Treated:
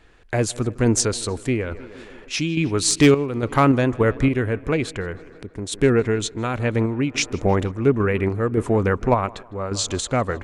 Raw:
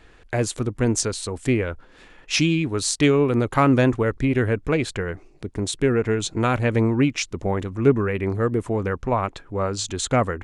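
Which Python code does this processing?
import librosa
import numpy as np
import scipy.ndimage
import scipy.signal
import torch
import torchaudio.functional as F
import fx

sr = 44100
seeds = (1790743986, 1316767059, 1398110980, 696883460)

y = fx.echo_tape(x, sr, ms=157, feedback_pct=81, wet_db=-20.5, lp_hz=3700.0, drive_db=6.0, wow_cents=8)
y = fx.tremolo_random(y, sr, seeds[0], hz=3.5, depth_pct=70)
y = np.clip(y, -10.0 ** (-11.5 / 20.0), 10.0 ** (-11.5 / 20.0))
y = F.gain(torch.from_numpy(y), 5.0).numpy()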